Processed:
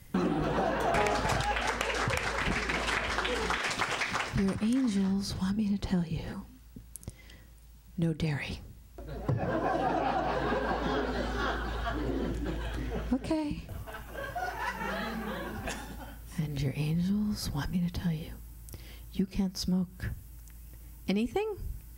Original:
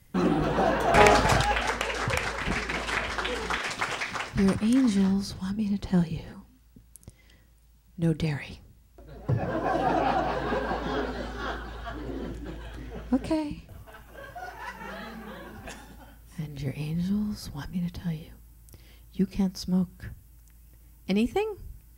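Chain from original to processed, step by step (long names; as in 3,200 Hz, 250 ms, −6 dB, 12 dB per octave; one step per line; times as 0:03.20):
downward compressor 4 to 1, threshold −33 dBFS, peak gain reduction 17 dB
level +5 dB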